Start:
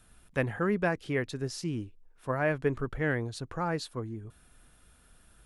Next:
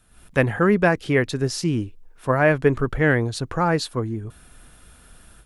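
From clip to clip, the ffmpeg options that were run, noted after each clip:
-af "dynaudnorm=f=110:g=3:m=3.55"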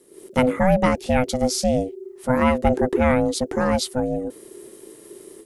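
-af "bass=f=250:g=10,treble=f=4000:g=11,aeval=exprs='val(0)*sin(2*PI*380*n/s)':c=same,volume=0.841"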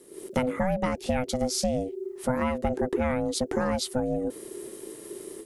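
-af "acompressor=threshold=0.0562:ratio=6,volume=1.26"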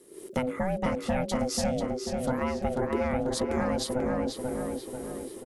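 -filter_complex "[0:a]asplit=2[s0][s1];[s1]adelay=489,lowpass=f=3800:p=1,volume=0.708,asplit=2[s2][s3];[s3]adelay=489,lowpass=f=3800:p=1,volume=0.52,asplit=2[s4][s5];[s5]adelay=489,lowpass=f=3800:p=1,volume=0.52,asplit=2[s6][s7];[s7]adelay=489,lowpass=f=3800:p=1,volume=0.52,asplit=2[s8][s9];[s9]adelay=489,lowpass=f=3800:p=1,volume=0.52,asplit=2[s10][s11];[s11]adelay=489,lowpass=f=3800:p=1,volume=0.52,asplit=2[s12][s13];[s13]adelay=489,lowpass=f=3800:p=1,volume=0.52[s14];[s0][s2][s4][s6][s8][s10][s12][s14]amix=inputs=8:normalize=0,volume=0.708"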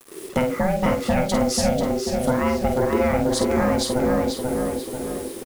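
-filter_complex "[0:a]acrusher=bits=7:mix=0:aa=0.000001,asplit=2[s0][s1];[s1]adelay=49,volume=0.447[s2];[s0][s2]amix=inputs=2:normalize=0,volume=2.24"

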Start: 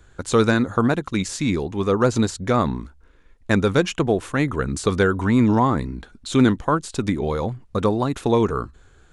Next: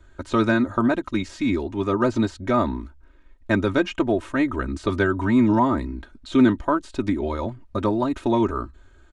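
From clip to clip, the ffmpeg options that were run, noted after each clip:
-filter_complex "[0:a]highshelf=f=5000:g=-10,aecho=1:1:3.2:0.84,acrossover=split=4500[s0][s1];[s1]acompressor=threshold=0.00631:ratio=4:attack=1:release=60[s2];[s0][s2]amix=inputs=2:normalize=0,volume=0.708"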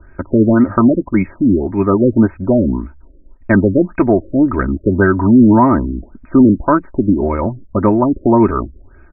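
-af "equalizer=f=170:t=o:w=0.46:g=9,apsyclip=3.76,afftfilt=real='re*lt(b*sr/1024,570*pow(2700/570,0.5+0.5*sin(2*PI*1.8*pts/sr)))':imag='im*lt(b*sr/1024,570*pow(2700/570,0.5+0.5*sin(2*PI*1.8*pts/sr)))':win_size=1024:overlap=0.75,volume=0.75"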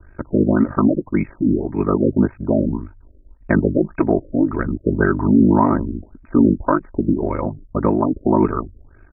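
-af "aeval=exprs='val(0)*sin(2*PI*25*n/s)':c=same,volume=0.794"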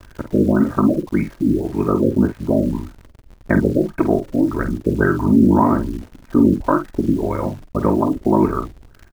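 -filter_complex "[0:a]acrusher=bits=8:dc=4:mix=0:aa=0.000001,asplit=2[s0][s1];[s1]adelay=49,volume=0.335[s2];[s0][s2]amix=inputs=2:normalize=0"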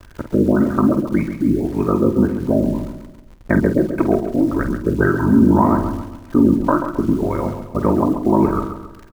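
-af "aecho=1:1:135|270|405|540|675:0.355|0.149|0.0626|0.0263|0.011"

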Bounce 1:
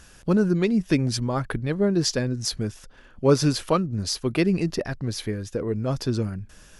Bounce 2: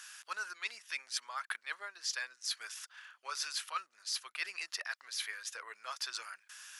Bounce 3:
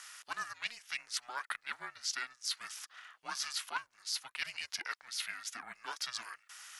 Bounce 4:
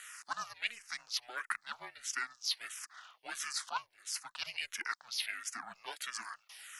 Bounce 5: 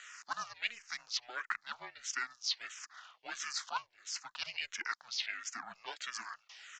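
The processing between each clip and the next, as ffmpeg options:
-af "highpass=f=1200:w=0.5412,highpass=f=1200:w=1.3066,areverse,acompressor=threshold=0.0126:ratio=6,areverse,volume=1.33"
-af "aeval=exprs='val(0)*sin(2*PI*240*n/s)':c=same,volume=1.41"
-filter_complex "[0:a]acrossover=split=140[s0][s1];[s0]aeval=exprs='max(val(0),0)':c=same[s2];[s2][s1]amix=inputs=2:normalize=0,asplit=2[s3][s4];[s4]afreqshift=-1.5[s5];[s3][s5]amix=inputs=2:normalize=1,volume=1.5"
-af "aresample=16000,aresample=44100"

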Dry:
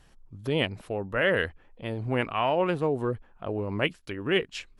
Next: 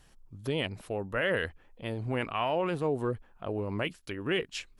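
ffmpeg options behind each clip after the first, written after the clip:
-af "alimiter=limit=0.126:level=0:latency=1:release=11,highshelf=f=5000:g=6.5,volume=0.75"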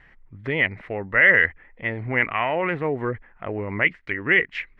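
-af "lowpass=f=2000:t=q:w=9.2,volume=1.58"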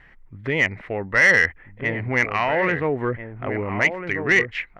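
-filter_complex "[0:a]asplit=2[s0][s1];[s1]adelay=1341,volume=0.398,highshelf=f=4000:g=-30.2[s2];[s0][s2]amix=inputs=2:normalize=0,acontrast=86,volume=0.562"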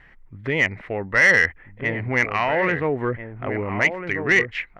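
-af anull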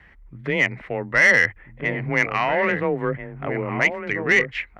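-af "afreqshift=21"

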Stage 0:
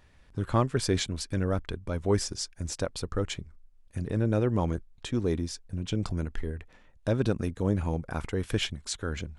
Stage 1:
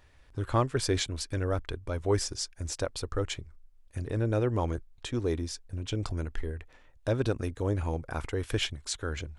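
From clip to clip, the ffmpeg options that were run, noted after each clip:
-af "equalizer=f=190:w=3:g=-13"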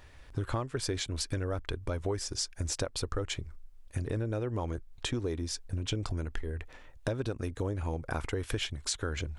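-af "acompressor=threshold=0.0178:ratio=12,volume=2"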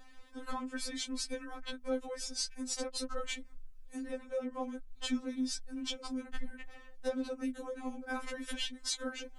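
-af "afftfilt=real='re*3.46*eq(mod(b,12),0)':imag='im*3.46*eq(mod(b,12),0)':win_size=2048:overlap=0.75"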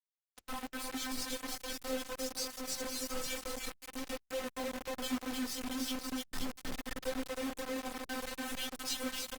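-af "aecho=1:1:310|527|678.9|785.2|859.7:0.631|0.398|0.251|0.158|0.1,acrusher=bits=5:mix=0:aa=0.000001,volume=0.668" -ar 48000 -c:a libopus -b:a 24k

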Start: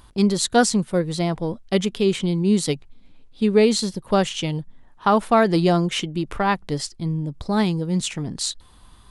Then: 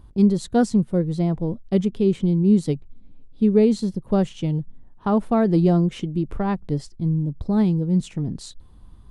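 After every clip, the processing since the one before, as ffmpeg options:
-af "tiltshelf=f=640:g=9.5,volume=0.562"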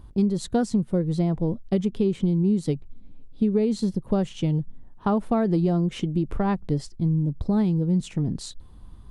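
-af "acompressor=threshold=0.1:ratio=6,volume=1.19"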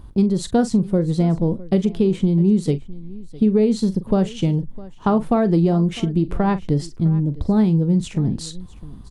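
-af "aecho=1:1:42|656:0.2|0.1,volume=1.78"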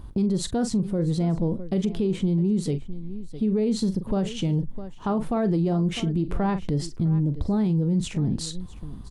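-af "alimiter=limit=0.15:level=0:latency=1:release=51"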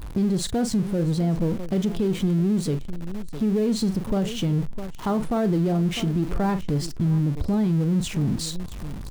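-af "aeval=exprs='val(0)+0.5*0.0211*sgn(val(0))':c=same"

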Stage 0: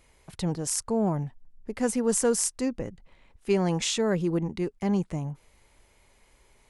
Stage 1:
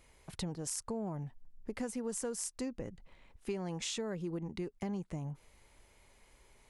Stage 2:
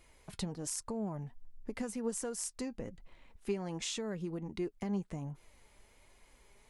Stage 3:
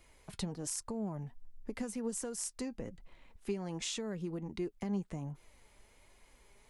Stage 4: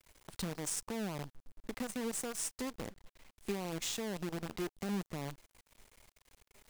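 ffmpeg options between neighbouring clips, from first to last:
-af "acompressor=threshold=0.0224:ratio=6,volume=0.75"
-af "flanger=delay=2.8:depth=2.2:regen=67:speed=1.3:shape=sinusoidal,volume=1.68"
-filter_complex "[0:a]acrossover=split=390|3000[s0][s1][s2];[s1]acompressor=threshold=0.00794:ratio=6[s3];[s0][s3][s2]amix=inputs=3:normalize=0"
-af "crystalizer=i=0.5:c=0,aresample=22050,aresample=44100,acrusher=bits=7:dc=4:mix=0:aa=0.000001,volume=0.841"

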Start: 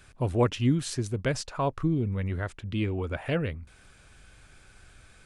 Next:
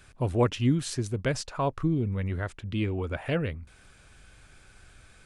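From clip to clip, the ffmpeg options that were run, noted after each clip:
-af anull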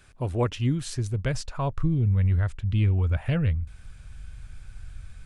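-af "asubboost=boost=9.5:cutoff=120,volume=0.841"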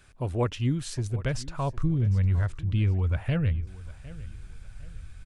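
-af "aecho=1:1:756|1512|2268:0.126|0.0428|0.0146,volume=0.841"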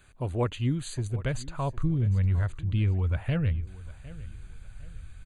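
-af "asuperstop=centerf=5400:order=20:qfactor=4.4,volume=0.891"

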